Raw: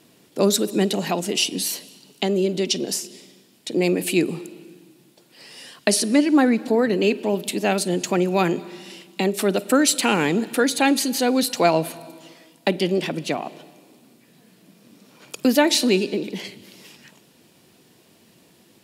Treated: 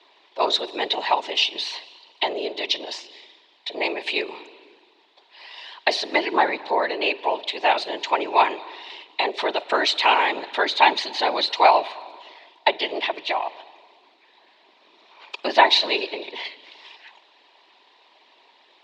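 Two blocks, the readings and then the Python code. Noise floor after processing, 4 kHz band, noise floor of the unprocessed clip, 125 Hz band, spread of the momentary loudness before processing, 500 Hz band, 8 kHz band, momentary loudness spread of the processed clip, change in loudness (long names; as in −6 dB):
−58 dBFS, +3.0 dB, −56 dBFS, below −25 dB, 17 LU, −4.0 dB, −17.0 dB, 17 LU, −1.0 dB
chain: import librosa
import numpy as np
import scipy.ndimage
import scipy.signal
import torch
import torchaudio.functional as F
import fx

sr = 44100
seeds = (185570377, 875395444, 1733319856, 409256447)

y = fx.whisperise(x, sr, seeds[0])
y = fx.cabinet(y, sr, low_hz=470.0, low_slope=24, high_hz=4000.0, hz=(500.0, 950.0, 1400.0, 2000.0, 3800.0), db=(-9, 10, -5, 3, 6))
y = y * librosa.db_to_amplitude(2.5)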